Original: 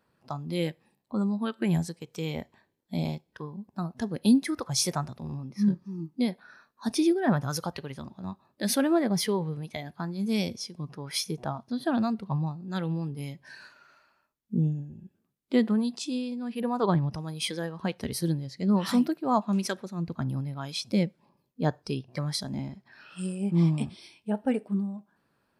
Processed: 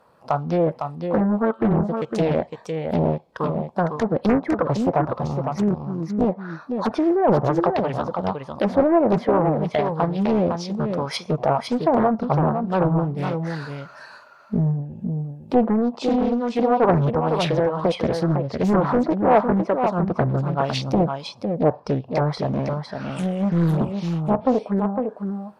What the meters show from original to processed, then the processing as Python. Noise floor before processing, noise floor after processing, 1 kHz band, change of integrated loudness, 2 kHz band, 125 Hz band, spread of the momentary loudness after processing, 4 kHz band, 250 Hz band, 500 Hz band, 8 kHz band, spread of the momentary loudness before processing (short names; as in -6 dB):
-74 dBFS, -47 dBFS, +13.0 dB, +7.5 dB, +6.0 dB, +7.0 dB, 9 LU, -0.5 dB, +6.0 dB, +13.0 dB, n/a, 14 LU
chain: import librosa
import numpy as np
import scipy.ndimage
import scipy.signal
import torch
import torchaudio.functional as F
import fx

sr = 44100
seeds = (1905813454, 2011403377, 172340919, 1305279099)

p1 = fx.env_lowpass_down(x, sr, base_hz=1100.0, full_db=-25.0)
p2 = fx.band_shelf(p1, sr, hz=770.0, db=10.5, octaves=1.7)
p3 = fx.over_compress(p2, sr, threshold_db=-27.0, ratio=-1.0)
p4 = p2 + F.gain(torch.from_numpy(p3), -2.5).numpy()
p5 = 10.0 ** (-8.5 / 20.0) * np.tanh(p4 / 10.0 ** (-8.5 / 20.0))
p6 = p5 + fx.echo_single(p5, sr, ms=506, db=-6.0, dry=0)
p7 = fx.doppler_dist(p6, sr, depth_ms=0.77)
y = F.gain(torch.from_numpy(p7), 2.0).numpy()